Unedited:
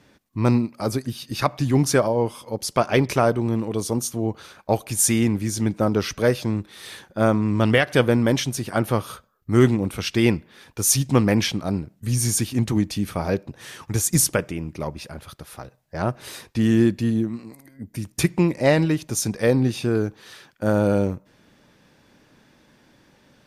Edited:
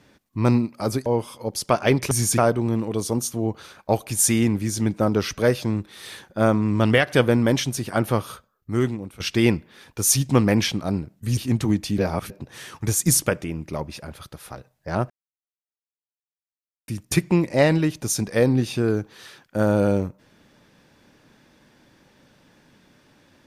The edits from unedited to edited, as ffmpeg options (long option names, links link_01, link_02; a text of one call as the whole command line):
ffmpeg -i in.wav -filter_complex "[0:a]asplit=10[link_01][link_02][link_03][link_04][link_05][link_06][link_07][link_08][link_09][link_10];[link_01]atrim=end=1.062[link_11];[link_02]atrim=start=2.128:end=3.182[link_12];[link_03]atrim=start=12.168:end=12.442[link_13];[link_04]atrim=start=3.178:end=10,asetpts=PTS-STARTPTS,afade=type=out:start_time=5.792:duration=1.03:silence=0.177828[link_14];[link_05]atrim=start=10:end=12.172,asetpts=PTS-STARTPTS,afade=type=in:duration=0.004:curve=hsin:silence=0.177828[link_15];[link_06]atrim=start=12.438:end=13.052[link_16];[link_07]atrim=start=13.048:end=13.372,asetpts=PTS-STARTPTS,areverse[link_17];[link_08]atrim=start=13.368:end=16.17,asetpts=PTS-STARTPTS,afade=type=out:start_time=2.798:duration=0.004:curve=hsin[link_18];[link_09]atrim=start=16.17:end=17.95,asetpts=PTS-STARTPTS,volume=0[link_19];[link_10]atrim=start=17.95,asetpts=PTS-STARTPTS,afade=type=in:duration=0.004:curve=hsin[link_20];[link_11][link_12]acrossfade=duration=0.004:curve1=hsin:curve2=hsin[link_21];[link_21][link_13]acrossfade=duration=0.004:curve1=hsin:curve2=hsin[link_22];[link_14][link_15]concat=n=2:v=0:a=1[link_23];[link_22][link_23]acrossfade=duration=0.004:curve1=hsin:curve2=hsin[link_24];[link_24][link_16]acrossfade=duration=0.004:curve1=hsin:curve2=hsin[link_25];[link_25][link_17]acrossfade=duration=0.004:curve1=hsin:curve2=hsin[link_26];[link_18][link_19][link_20]concat=n=3:v=0:a=1[link_27];[link_26][link_27]acrossfade=duration=0.004:curve1=hsin:curve2=hsin" out.wav